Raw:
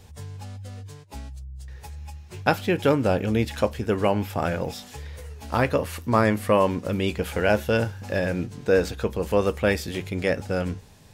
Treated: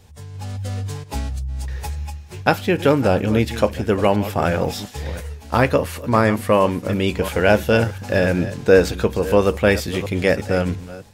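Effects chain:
delay that plays each chunk backwards 347 ms, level −14 dB
automatic gain control gain up to 13 dB
0:04.04–0:06.05: downward expander −25 dBFS
level −1 dB

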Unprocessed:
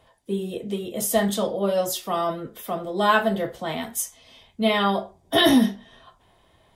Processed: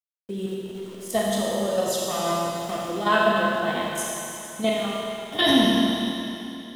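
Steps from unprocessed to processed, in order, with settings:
0:02.09–0:02.84: spectral envelope flattened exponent 0.6
low-pass filter 9,500 Hz 12 dB per octave
hum removal 155.4 Hz, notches 36
output level in coarse steps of 10 dB
0:00.46–0:01.09: volume swells 355 ms
0:04.69–0:05.39: downward compressor 2.5 to 1, threshold −40 dBFS, peak gain reduction 14.5 dB
centre clipping without the shift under −45.5 dBFS
four-comb reverb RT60 3.1 s, combs from 26 ms, DRR −3.5 dB

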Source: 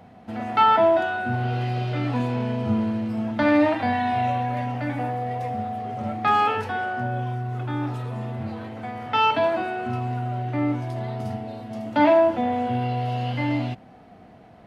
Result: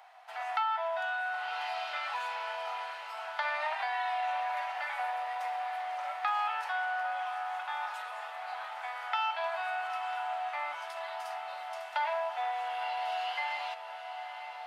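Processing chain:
Butterworth high-pass 770 Hz 36 dB per octave
downward compressor 4 to 1, threshold −31 dBFS, peak gain reduction 14 dB
on a send: feedback delay with all-pass diffusion 915 ms, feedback 76%, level −11 dB

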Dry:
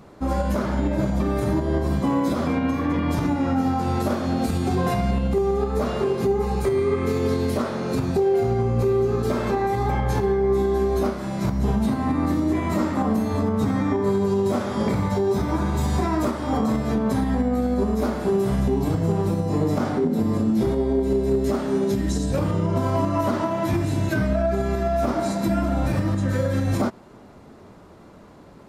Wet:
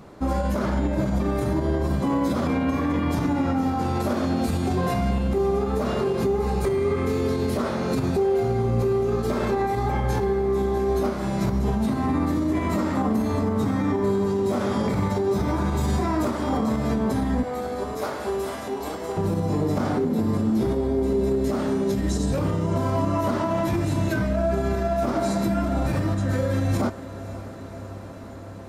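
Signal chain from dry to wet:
0:17.43–0:19.17: Bessel high-pass filter 580 Hz, order 4
brickwall limiter −17 dBFS, peak gain reduction 5 dB
feedback delay with all-pass diffusion 567 ms, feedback 78%, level −16 dB
level +1.5 dB

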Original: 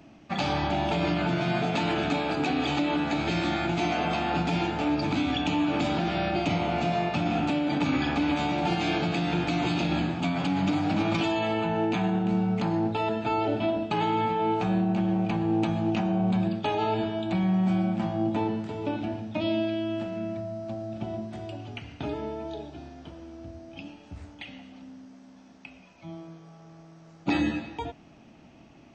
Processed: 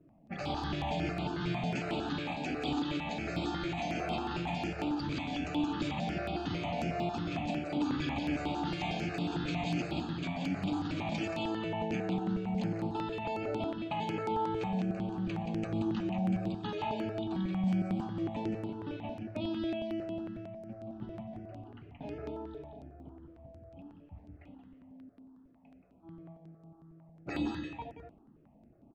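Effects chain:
low-pass that shuts in the quiet parts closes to 650 Hz, open at −22.5 dBFS
on a send: single-tap delay 177 ms −5 dB
on the sum: step-sequenced phaser 11 Hz 220–6,100 Hz
level −6.5 dB

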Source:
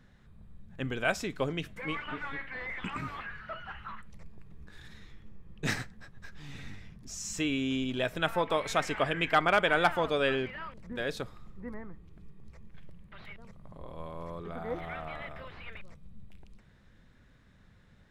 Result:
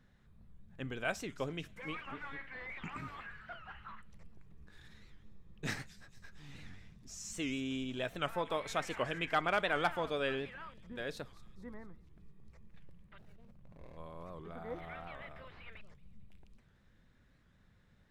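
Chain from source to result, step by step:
0:13.18–0:13.97: running median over 41 samples
delay with a high-pass on its return 226 ms, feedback 46%, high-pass 4,300 Hz, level −13.5 dB
wow of a warped record 78 rpm, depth 160 cents
level −7 dB

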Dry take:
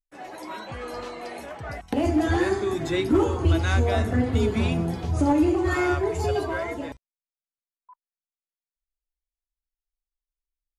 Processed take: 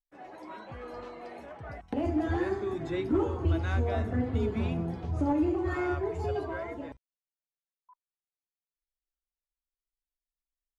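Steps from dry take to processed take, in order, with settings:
low-pass filter 1,700 Hz 6 dB per octave
level −6.5 dB

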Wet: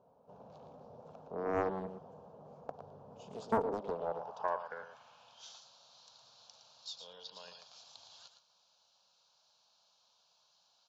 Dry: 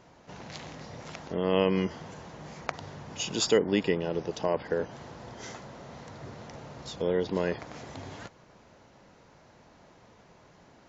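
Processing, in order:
phaser with its sweep stopped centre 820 Hz, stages 4
single-tap delay 113 ms −8.5 dB
band-pass filter sweep 390 Hz → 4,200 Hz, 0:03.57–0:05.63
highs frequency-modulated by the lows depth 0.76 ms
level +3 dB

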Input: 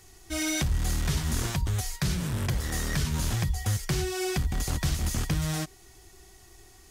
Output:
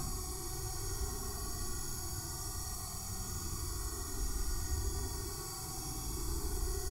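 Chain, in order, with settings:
flat-topped bell 2,700 Hz −12.5 dB 1.2 octaves
comb filter 0.9 ms, depth 86%
backwards echo 691 ms −4 dB
extreme stretch with random phases 21×, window 0.05 s, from 0:05.67
level +10 dB

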